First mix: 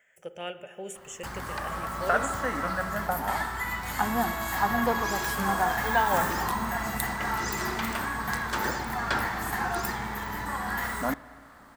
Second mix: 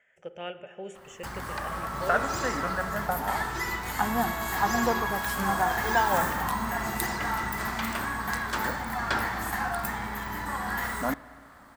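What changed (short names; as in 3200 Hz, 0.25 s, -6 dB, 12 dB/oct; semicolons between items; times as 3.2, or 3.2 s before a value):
speech: add air absorption 130 m; second sound: entry -2.75 s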